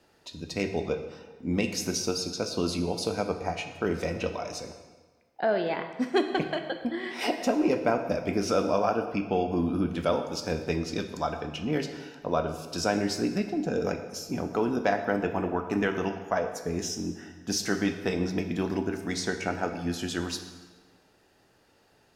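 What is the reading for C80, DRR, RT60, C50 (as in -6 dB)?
10.0 dB, 6.5 dB, 1.4 s, 8.5 dB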